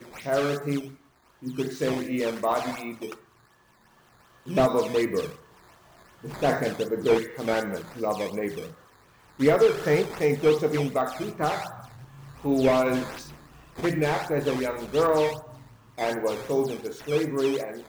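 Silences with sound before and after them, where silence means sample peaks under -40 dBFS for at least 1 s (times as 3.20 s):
3.15–4.46 s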